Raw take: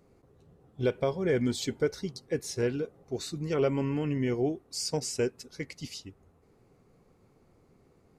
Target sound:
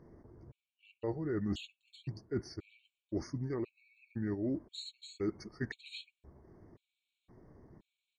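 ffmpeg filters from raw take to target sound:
-af "aemphasis=mode=reproduction:type=75fm,areverse,acompressor=threshold=-37dB:ratio=8,areverse,asetrate=37084,aresample=44100,atempo=1.18921,afftfilt=real='re*gt(sin(2*PI*0.96*pts/sr)*(1-2*mod(floor(b*sr/1024/2200),2)),0)':imag='im*gt(sin(2*PI*0.96*pts/sr)*(1-2*mod(floor(b*sr/1024/2200),2)),0)':win_size=1024:overlap=0.75,volume=4.5dB"

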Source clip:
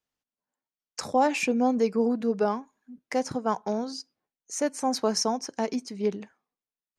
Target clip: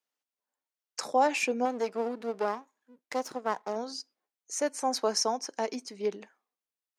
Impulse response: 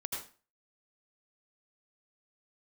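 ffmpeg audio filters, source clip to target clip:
-filter_complex "[0:a]asettb=1/sr,asplit=3[a][b][c];[a]atrim=end=1.654[d];[b]atrim=start=1.65:end=3.76,asetpts=PTS-STARTPTS,afade=t=in:d=0.004:c=qsin,afade=t=out:st=2.106:d=0.004:c=qsin,aeval=exprs='if(lt(val(0),0),0.251*val(0),val(0))':c=same[e];[c]atrim=start=3.756[f];[d][e]acrossfade=d=0.004:c1=hsin:c2=qsin[g];[g][f]acrossfade=d=0.004:c1=qsin:c2=hsin,highpass=360,volume=-1dB"

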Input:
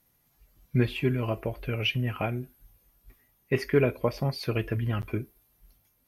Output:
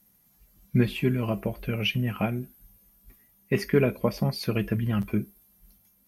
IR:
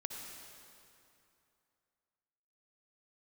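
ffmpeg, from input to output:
-filter_complex "[0:a]equalizer=f=200:w=5:g=15,acrossover=split=5700[a][b];[b]acontrast=70[c];[a][c]amix=inputs=2:normalize=0"

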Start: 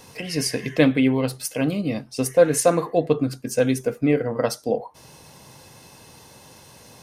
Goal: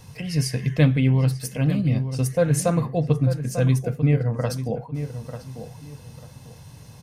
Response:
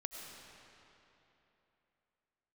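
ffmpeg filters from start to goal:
-filter_complex "[0:a]lowshelf=f=200:t=q:w=1.5:g=12.5,asplit=2[a][b];[b]adelay=894,lowpass=f=2.2k:p=1,volume=-10dB,asplit=2[c][d];[d]adelay=894,lowpass=f=2.2k:p=1,volume=0.25,asplit=2[e][f];[f]adelay=894,lowpass=f=2.2k:p=1,volume=0.25[g];[a][c][e][g]amix=inputs=4:normalize=0,volume=-4.5dB"

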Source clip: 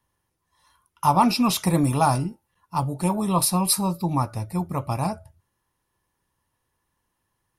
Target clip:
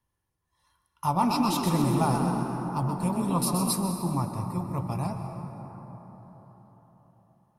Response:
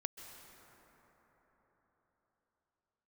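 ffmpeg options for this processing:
-filter_complex "[0:a]lowshelf=f=190:g=6,asettb=1/sr,asplit=3[a][b][c];[a]atrim=end=1.064[d];[b]atrim=start=1.06:end=3.71,asetpts=PTS-STARTPTS,afade=t=in:d=0.004:c=qsin,afade=t=out:st=2.646:d=0.004:c=qsin,asplit=7[e][f][g][h][i][j][k];[f]adelay=126,afreqshift=51,volume=-6dB[l];[g]adelay=252,afreqshift=102,volume=-11.7dB[m];[h]adelay=378,afreqshift=153,volume=-17.4dB[n];[i]adelay=504,afreqshift=204,volume=-23dB[o];[j]adelay=630,afreqshift=255,volume=-28.7dB[p];[k]adelay=756,afreqshift=306,volume=-34.4dB[q];[e][l][m][n][o][p][q]amix=inputs=7:normalize=0,atrim=end_sample=116865[r];[c]atrim=start=3.706[s];[d][r]acrossfade=d=0.004:c1=hsin:c2=qsin[t];[t][s]acrossfade=d=0.004:c1=qsin:c2=hsin[u];[1:a]atrim=start_sample=2205[v];[u][v]afir=irnorm=-1:irlink=0,volume=-5.5dB"

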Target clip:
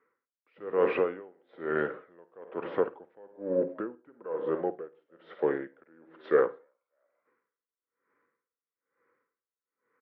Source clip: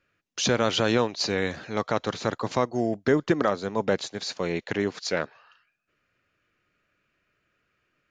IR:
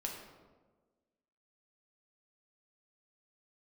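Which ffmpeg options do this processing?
-filter_complex "[0:a]bandreject=f=1.1k:w=20,asplit=2[a][b];[b]asoftclip=type=tanh:threshold=-21.5dB,volume=-7.5dB[c];[a][c]amix=inputs=2:normalize=0,highpass=440,equalizer=f=600:t=q:w=4:g=9,equalizer=f=870:t=q:w=4:g=-4,equalizer=f=1.4k:t=q:w=4:g=-4,lowpass=f=2.2k:w=0.5412,lowpass=f=2.2k:w=1.3066,asplit=3[d][e][f];[e]adelay=237,afreqshift=73,volume=-22.5dB[g];[f]adelay=474,afreqshift=146,volume=-31.9dB[h];[d][g][h]amix=inputs=3:normalize=0,asplit=2[i][j];[1:a]atrim=start_sample=2205,atrim=end_sample=4410,adelay=43[k];[j][k]afir=irnorm=-1:irlink=0,volume=-10.5dB[l];[i][l]amix=inputs=2:normalize=0,asetrate=35721,aresample=44100,aeval=exprs='val(0)*pow(10,-32*(0.5-0.5*cos(2*PI*1.1*n/s))/20)':c=same"

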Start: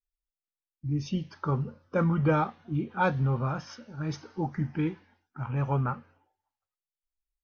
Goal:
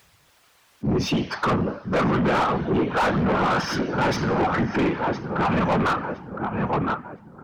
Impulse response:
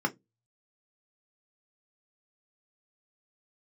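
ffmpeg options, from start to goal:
-filter_complex "[0:a]asplit=2[a][b];[b]adelay=1013,lowpass=f=2k:p=1,volume=-11dB,asplit=2[c][d];[d]adelay=1013,lowpass=f=2k:p=1,volume=0.38,asplit=2[e][f];[f]adelay=1013,lowpass=f=2k:p=1,volume=0.38,asplit=2[g][h];[h]adelay=1013,lowpass=f=2k:p=1,volume=0.38[i];[a][c][e][g][i]amix=inputs=5:normalize=0,afftfilt=real='hypot(re,im)*cos(2*PI*random(0))':imag='hypot(re,im)*sin(2*PI*random(1))':win_size=512:overlap=0.75,acompressor=threshold=-33dB:ratio=6,asplit=2[j][k];[k]highpass=f=720:p=1,volume=40dB,asoftclip=type=tanh:threshold=-12dB[l];[j][l]amix=inputs=2:normalize=0,lowpass=f=1.9k:p=1,volume=-6dB,acompressor=mode=upward:threshold=-42dB:ratio=2.5"

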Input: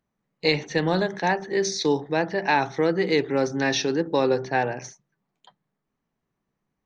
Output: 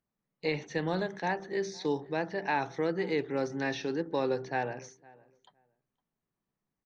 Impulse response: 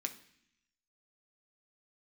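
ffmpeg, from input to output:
-filter_complex "[0:a]acrossover=split=2900[a][b];[b]acompressor=threshold=-36dB:ratio=4:attack=1:release=60[c];[a][c]amix=inputs=2:normalize=0,asplit=2[d][e];[e]adelay=510,lowpass=f=1.9k:p=1,volume=-23.5dB,asplit=2[f][g];[g]adelay=510,lowpass=f=1.9k:p=1,volume=0.18[h];[d][f][h]amix=inputs=3:normalize=0,volume=-8.5dB"

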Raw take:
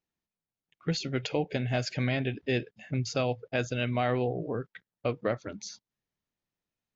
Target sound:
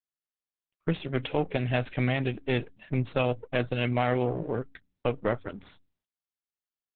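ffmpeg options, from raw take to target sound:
-af "aeval=exprs='if(lt(val(0),0),0.447*val(0),val(0))':c=same,agate=range=-21dB:threshold=-51dB:ratio=16:detection=peak,bandreject=f=91.5:t=h:w=4,bandreject=f=183:t=h:w=4,bandreject=f=274.5:t=h:w=4,aresample=8000,aresample=44100,volume=4.5dB" -ar 48000 -c:a libopus -b:a 8k

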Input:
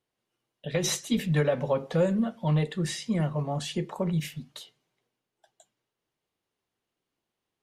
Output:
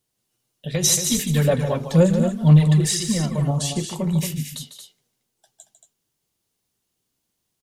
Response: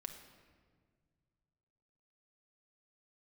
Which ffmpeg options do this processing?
-filter_complex "[0:a]bass=f=250:g=8,treble=f=4k:g=15,asettb=1/sr,asplit=3[a][b][c];[a]atrim=end=1.024[d];[b]atrim=start=1.02:end=3.51,asetpts=PTS-STARTPTS,afade=t=in:d=0.004:c=qsin,afade=t=out:st=2.486:d=0.004:c=qsin,aphaser=in_gain=1:out_gain=1:delay=3:decay=0.53:speed=2:type=sinusoidal[e];[c]atrim=start=3.506[f];[d][e]acrossfade=d=0.004:c1=hsin:c2=qsin[g];[g][f]acrossfade=d=0.004:c1=qsin:c2=hsin,aecho=1:1:148.7|227.4:0.316|0.398"

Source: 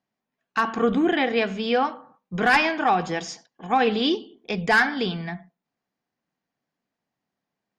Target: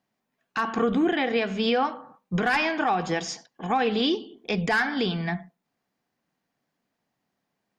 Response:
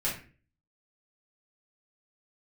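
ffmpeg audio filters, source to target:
-af "alimiter=limit=-19.5dB:level=0:latency=1:release=287,volume=4.5dB"

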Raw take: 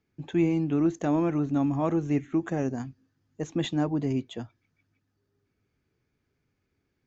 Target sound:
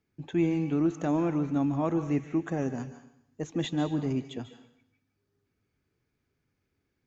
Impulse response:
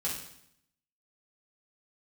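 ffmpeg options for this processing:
-filter_complex "[0:a]asplit=2[a][b];[1:a]atrim=start_sample=2205,lowshelf=f=490:g=-12,adelay=138[c];[b][c]afir=irnorm=-1:irlink=0,volume=-12dB[d];[a][d]amix=inputs=2:normalize=0,volume=-2dB"

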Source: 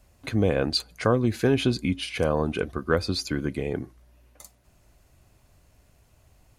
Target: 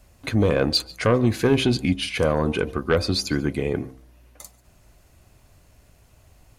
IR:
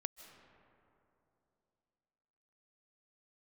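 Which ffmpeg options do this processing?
-filter_complex "[0:a]aeval=exprs='0.422*sin(PI/2*1.58*val(0)/0.422)':c=same,bandreject=f=65:t=h:w=4,bandreject=f=130:t=h:w=4,bandreject=f=195:t=h:w=4,bandreject=f=260:t=h:w=4,bandreject=f=325:t=h:w=4,bandreject=f=390:t=h:w=4,bandreject=f=455:t=h:w=4,bandreject=f=520:t=h:w=4,bandreject=f=585:t=h:w=4,bandreject=f=650:t=h:w=4,bandreject=f=715:t=h:w=4,bandreject=f=780:t=h:w=4,bandreject=f=845:t=h:w=4,bandreject=f=910:t=h:w=4,bandreject=f=975:t=h:w=4,bandreject=f=1.04k:t=h:w=4,bandreject=f=1.105k:t=h:w=4[a];[1:a]atrim=start_sample=2205,atrim=end_sample=6615[b];[a][b]afir=irnorm=-1:irlink=0"

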